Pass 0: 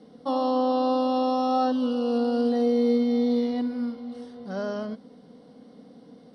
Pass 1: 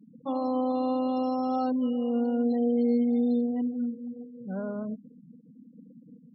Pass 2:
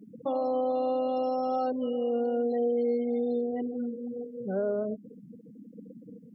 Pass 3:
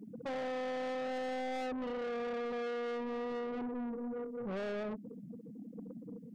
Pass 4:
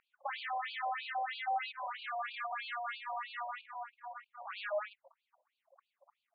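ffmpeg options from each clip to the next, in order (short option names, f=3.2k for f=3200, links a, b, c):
-af "equalizer=f=140:w=0.89:g=11,afftfilt=real='re*gte(hypot(re,im),0.0282)':imag='im*gte(hypot(re,im),0.0282)':win_size=1024:overlap=0.75,volume=-6.5dB"
-af "equalizer=f=160:t=o:w=0.33:g=-9,equalizer=f=250:t=o:w=0.33:g=-8,equalizer=f=400:t=o:w=0.33:g=11,equalizer=f=630:t=o:w=0.33:g=7,equalizer=f=1k:t=o:w=0.33:g=-8,equalizer=f=2k:t=o:w=0.33:g=4,equalizer=f=4k:t=o:w=0.33:g=-5,acompressor=threshold=-41dB:ratio=2,volume=8dB"
-af "asoftclip=type=tanh:threshold=-37.5dB,volume=1dB"
-af "afftfilt=real='re*between(b*sr/1024,740*pow(3400/740,0.5+0.5*sin(2*PI*3.1*pts/sr))/1.41,740*pow(3400/740,0.5+0.5*sin(2*PI*3.1*pts/sr))*1.41)':imag='im*between(b*sr/1024,740*pow(3400/740,0.5+0.5*sin(2*PI*3.1*pts/sr))/1.41,740*pow(3400/740,0.5+0.5*sin(2*PI*3.1*pts/sr))*1.41)':win_size=1024:overlap=0.75,volume=10.5dB"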